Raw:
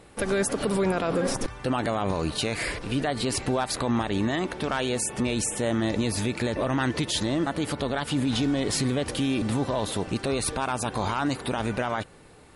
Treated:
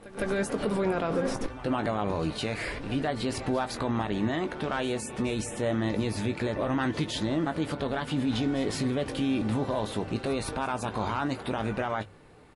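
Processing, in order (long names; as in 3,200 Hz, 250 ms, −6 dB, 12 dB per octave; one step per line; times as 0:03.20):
high-shelf EQ 5,100 Hz −11.5 dB
mains-hum notches 50/100 Hz
double-tracking delay 19 ms −9.5 dB
on a send: backwards echo 158 ms −16.5 dB
on the sum: level −2.5 dB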